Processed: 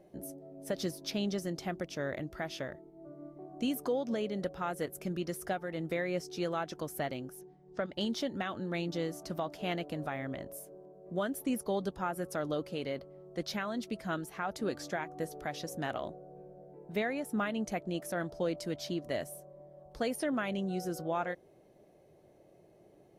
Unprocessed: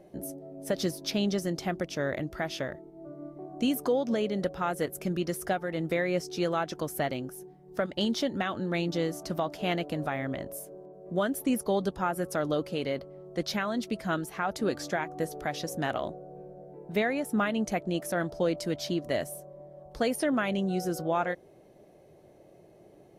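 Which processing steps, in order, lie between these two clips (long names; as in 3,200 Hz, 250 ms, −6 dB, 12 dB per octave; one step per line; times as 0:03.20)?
0:07.41–0:07.92: low-pass filter 6,800 Hz 24 dB per octave
level −5.5 dB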